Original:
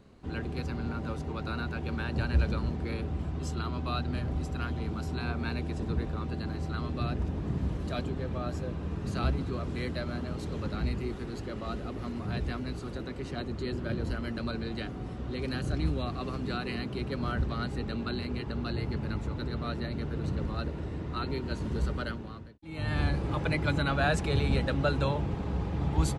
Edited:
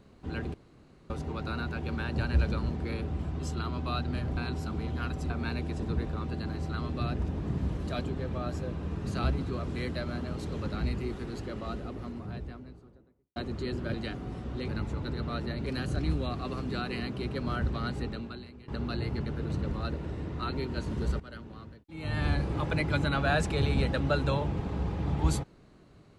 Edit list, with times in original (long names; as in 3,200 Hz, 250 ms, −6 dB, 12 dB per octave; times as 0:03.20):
0:00.54–0:01.10: fill with room tone
0:04.37–0:05.30: reverse
0:11.38–0:13.36: fade out and dull
0:13.94–0:14.68: remove
0:17.80–0:18.44: fade out quadratic, to −17 dB
0:19.02–0:20.00: move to 0:15.42
0:21.94–0:22.53: fade in, from −17 dB